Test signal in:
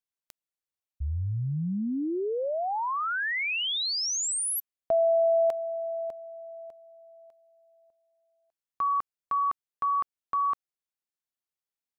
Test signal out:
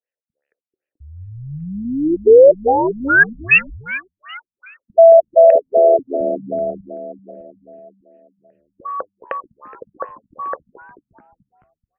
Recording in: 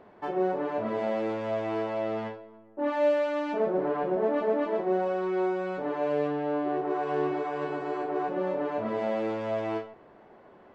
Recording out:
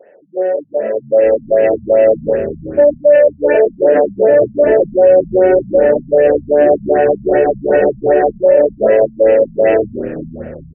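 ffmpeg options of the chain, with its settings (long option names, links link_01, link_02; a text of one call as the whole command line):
ffmpeg -i in.wav -filter_complex "[0:a]equalizer=frequency=210:width_type=o:width=2.5:gain=-7,flanger=delay=9.7:depth=4.4:regen=89:speed=1:shape=sinusoidal,asplit=3[link_01][link_02][link_03];[link_01]bandpass=frequency=530:width_type=q:width=8,volume=0dB[link_04];[link_02]bandpass=frequency=1840:width_type=q:width=8,volume=-6dB[link_05];[link_03]bandpass=frequency=2480:width_type=q:width=8,volume=-9dB[link_06];[link_04][link_05][link_06]amix=inputs=3:normalize=0,asplit=2[link_07][link_08];[link_08]asplit=6[link_09][link_10][link_11][link_12][link_13][link_14];[link_09]adelay=217,afreqshift=-78,volume=-17dB[link_15];[link_10]adelay=434,afreqshift=-156,volume=-20.9dB[link_16];[link_11]adelay=651,afreqshift=-234,volume=-24.8dB[link_17];[link_12]adelay=868,afreqshift=-312,volume=-28.6dB[link_18];[link_13]adelay=1085,afreqshift=-390,volume=-32.5dB[link_19];[link_14]adelay=1302,afreqshift=-468,volume=-36.4dB[link_20];[link_15][link_16][link_17][link_18][link_19][link_20]amix=inputs=6:normalize=0[link_21];[link_07][link_21]amix=inputs=2:normalize=0,dynaudnorm=framelen=180:gausssize=17:maxgain=14dB,highshelf=frequency=2500:gain=-6,alimiter=level_in=29dB:limit=-1dB:release=50:level=0:latency=1,afftfilt=real='re*lt(b*sr/1024,220*pow(3200/220,0.5+0.5*sin(2*PI*2.6*pts/sr)))':imag='im*lt(b*sr/1024,220*pow(3200/220,0.5+0.5*sin(2*PI*2.6*pts/sr)))':win_size=1024:overlap=0.75,volume=-1dB" out.wav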